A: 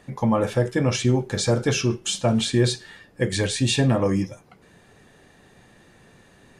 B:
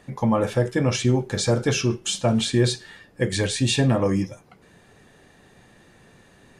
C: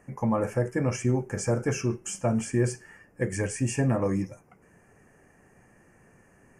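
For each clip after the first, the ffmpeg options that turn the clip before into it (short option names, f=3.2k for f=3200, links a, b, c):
-af anull
-af "asuperstop=centerf=3800:order=4:qfactor=1.1,volume=-5dB"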